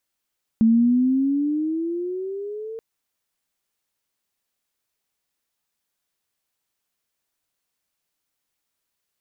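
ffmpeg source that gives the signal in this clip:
-f lavfi -i "aevalsrc='pow(10,(-12-18.5*t/2.18)/20)*sin(2*PI*221*2.18/(12.5*log(2)/12)*(exp(12.5*log(2)/12*t/2.18)-1))':d=2.18:s=44100"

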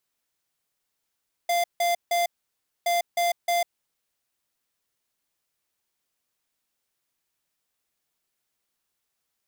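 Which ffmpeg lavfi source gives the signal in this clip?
-f lavfi -i "aevalsrc='0.0708*(2*lt(mod(693*t,1),0.5)-1)*clip(min(mod(mod(t,1.37),0.31),0.15-mod(mod(t,1.37),0.31))/0.005,0,1)*lt(mod(t,1.37),0.93)':d=2.74:s=44100"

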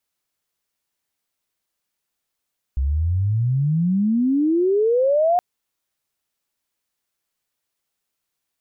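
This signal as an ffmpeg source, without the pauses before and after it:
-f lavfi -i "aevalsrc='pow(10,(-17.5+3.5*t/2.62)/20)*sin(2*PI*64*2.62/log(730/64)*(exp(log(730/64)*t/2.62)-1))':d=2.62:s=44100"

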